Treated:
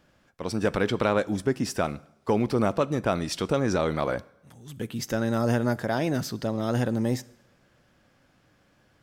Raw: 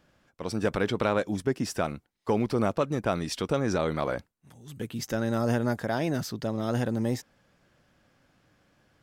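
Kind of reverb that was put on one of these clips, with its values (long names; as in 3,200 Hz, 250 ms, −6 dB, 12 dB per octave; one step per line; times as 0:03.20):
coupled-rooms reverb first 0.75 s, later 2.7 s, from −24 dB, DRR 18.5 dB
level +2 dB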